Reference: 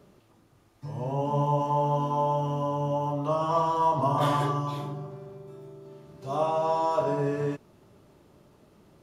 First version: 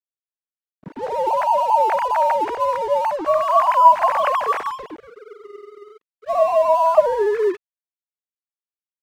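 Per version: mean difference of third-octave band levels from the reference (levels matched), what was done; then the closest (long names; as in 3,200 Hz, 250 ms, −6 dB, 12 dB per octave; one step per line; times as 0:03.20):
11.5 dB: three sine waves on the formant tracks
low-pass that shuts in the quiet parts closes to 740 Hz, open at −19.5 dBFS
in parallel at 0 dB: downward compressor, threshold −31 dBFS, peak gain reduction 16 dB
on the sum: dead-zone distortion −44 dBFS
level +6.5 dB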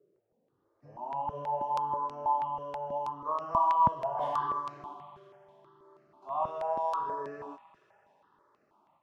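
8.5 dB: automatic gain control gain up to 9.5 dB
band-pass filter sweep 410 Hz → 970 Hz, 0:00.35–0:01.11
delay with a high-pass on its return 84 ms, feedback 84%, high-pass 2,200 Hz, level −8.5 dB
step-sequenced phaser 6.2 Hz 230–3,400 Hz
level −6.5 dB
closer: second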